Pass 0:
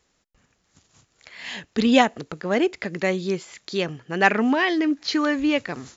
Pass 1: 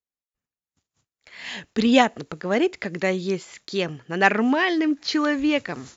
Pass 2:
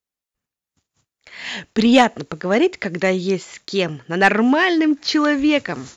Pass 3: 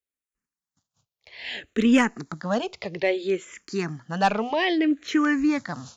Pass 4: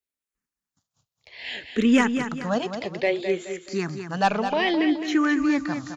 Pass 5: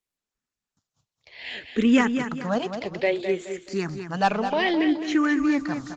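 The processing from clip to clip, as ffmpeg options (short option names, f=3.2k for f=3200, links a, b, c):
-af "agate=range=-33dB:threshold=-45dB:ratio=3:detection=peak"
-af "acontrast=62,volume=-1dB"
-filter_complex "[0:a]asplit=2[a][b];[b]afreqshift=-0.61[c];[a][c]amix=inputs=2:normalize=1,volume=-3.5dB"
-af "aecho=1:1:212|424|636|848:0.376|0.143|0.0543|0.0206"
-ar 48000 -c:a libopus -b:a 20k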